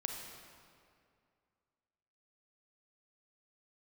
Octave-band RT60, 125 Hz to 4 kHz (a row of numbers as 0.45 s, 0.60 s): 2.4 s, 2.4 s, 2.4 s, 2.2 s, 2.0 s, 1.6 s